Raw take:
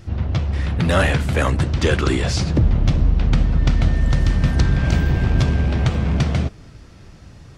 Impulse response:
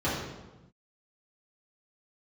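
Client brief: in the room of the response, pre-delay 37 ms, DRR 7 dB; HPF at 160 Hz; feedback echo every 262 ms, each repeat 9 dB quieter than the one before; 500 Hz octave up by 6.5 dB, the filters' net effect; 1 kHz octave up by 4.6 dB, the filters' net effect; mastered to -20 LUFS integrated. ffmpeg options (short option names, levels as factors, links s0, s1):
-filter_complex "[0:a]highpass=160,equalizer=f=500:t=o:g=7,equalizer=f=1000:t=o:g=4,aecho=1:1:262|524|786|1048:0.355|0.124|0.0435|0.0152,asplit=2[s0][s1];[1:a]atrim=start_sample=2205,adelay=37[s2];[s1][s2]afir=irnorm=-1:irlink=0,volume=0.112[s3];[s0][s3]amix=inputs=2:normalize=0,volume=0.841"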